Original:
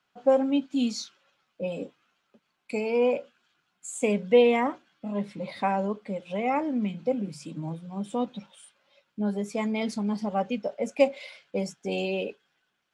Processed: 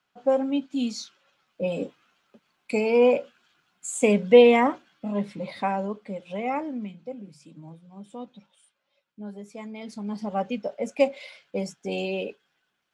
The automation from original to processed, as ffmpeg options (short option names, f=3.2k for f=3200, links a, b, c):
-af "volume=15dB,afade=t=in:st=1:d=0.82:silence=0.501187,afade=t=out:st=4.63:d=1.23:silence=0.473151,afade=t=out:st=6.52:d=0.48:silence=0.375837,afade=t=in:st=9.83:d=0.54:silence=0.316228"